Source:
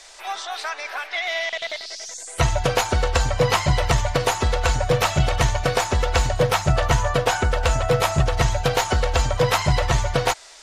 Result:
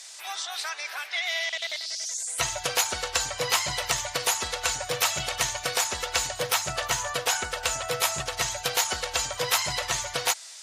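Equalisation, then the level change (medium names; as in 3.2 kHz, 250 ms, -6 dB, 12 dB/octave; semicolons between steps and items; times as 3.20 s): tilt EQ +4 dB/octave; -7.5 dB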